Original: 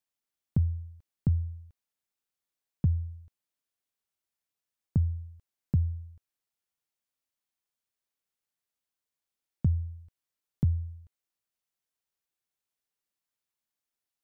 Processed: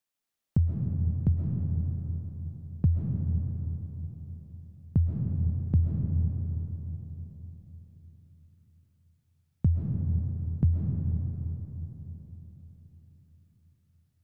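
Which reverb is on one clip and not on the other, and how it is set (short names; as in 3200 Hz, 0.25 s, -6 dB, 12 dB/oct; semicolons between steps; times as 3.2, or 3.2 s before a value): digital reverb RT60 4.2 s, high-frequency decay 0.4×, pre-delay 90 ms, DRR -1 dB; gain +1.5 dB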